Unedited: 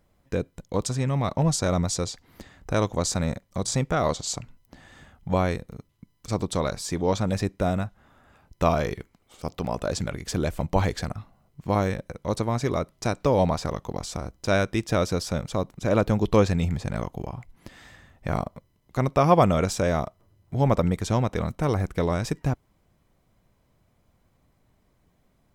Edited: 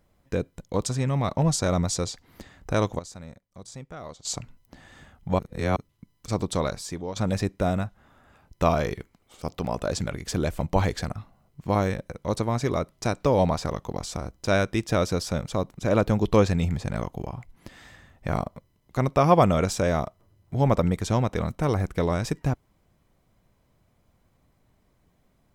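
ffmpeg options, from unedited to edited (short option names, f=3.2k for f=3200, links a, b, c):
-filter_complex "[0:a]asplit=6[a][b][c][d][e][f];[a]atrim=end=2.99,asetpts=PTS-STARTPTS,afade=t=out:st=2.83:d=0.16:c=log:silence=0.158489[g];[b]atrim=start=2.99:end=4.25,asetpts=PTS-STARTPTS,volume=-16dB[h];[c]atrim=start=4.25:end=5.392,asetpts=PTS-STARTPTS,afade=t=in:d=0.16:c=log:silence=0.158489[i];[d]atrim=start=5.388:end=5.762,asetpts=PTS-STARTPTS,areverse[j];[e]atrim=start=5.758:end=7.16,asetpts=PTS-STARTPTS,afade=t=out:st=0.872:d=0.53:silence=0.199526[k];[f]atrim=start=7.16,asetpts=PTS-STARTPTS,afade=t=in:d=0.004:c=hsin:silence=0.199526[l];[g][h][i]concat=n=3:v=0:a=1[m];[m][j]acrossfade=d=0.004:c1=hsin:c2=hsin[n];[k][l]concat=n=2:v=0:a=1[o];[n][o]acrossfade=d=0.004:c1=hsin:c2=hsin"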